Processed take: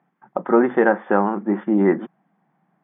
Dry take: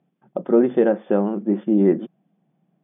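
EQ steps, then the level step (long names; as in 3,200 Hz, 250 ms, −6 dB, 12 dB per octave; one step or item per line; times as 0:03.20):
high-pass filter 140 Hz
high-frequency loss of the air 110 metres
flat-topped bell 1,300 Hz +13.5 dB
0.0 dB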